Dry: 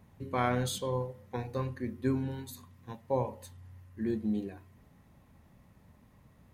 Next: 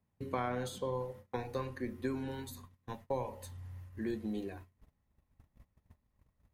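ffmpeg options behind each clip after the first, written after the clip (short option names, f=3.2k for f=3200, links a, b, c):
-filter_complex "[0:a]acrossover=split=270|1500[a][b][c];[a]acompressor=threshold=-46dB:ratio=4[d];[b]acompressor=threshold=-37dB:ratio=4[e];[c]acompressor=threshold=-51dB:ratio=4[f];[d][e][f]amix=inputs=3:normalize=0,asubboost=boost=4.5:cutoff=68,agate=range=-23dB:threshold=-52dB:ratio=16:detection=peak,volume=2.5dB"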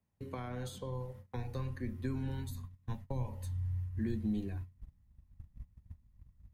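-filter_complex "[0:a]asubboost=boost=8:cutoff=170,acrossover=split=360|3000[a][b][c];[b]acompressor=threshold=-40dB:ratio=6[d];[a][d][c]amix=inputs=3:normalize=0,volume=-3dB"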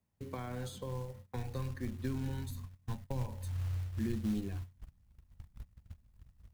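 -af "acrusher=bits=5:mode=log:mix=0:aa=0.000001"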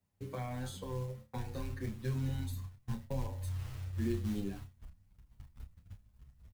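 -filter_complex "[0:a]asplit=2[a][b];[b]adelay=31,volume=-8dB[c];[a][c]amix=inputs=2:normalize=0,aecho=1:1:82:0.0668,asplit=2[d][e];[e]adelay=8.4,afreqshift=1.2[f];[d][f]amix=inputs=2:normalize=1,volume=3dB"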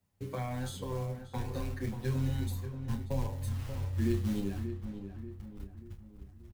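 -filter_complex "[0:a]asplit=2[a][b];[b]adelay=585,lowpass=f=1.9k:p=1,volume=-9dB,asplit=2[c][d];[d]adelay=585,lowpass=f=1.9k:p=1,volume=0.47,asplit=2[e][f];[f]adelay=585,lowpass=f=1.9k:p=1,volume=0.47,asplit=2[g][h];[h]adelay=585,lowpass=f=1.9k:p=1,volume=0.47,asplit=2[i][j];[j]adelay=585,lowpass=f=1.9k:p=1,volume=0.47[k];[a][c][e][g][i][k]amix=inputs=6:normalize=0,volume=3.5dB"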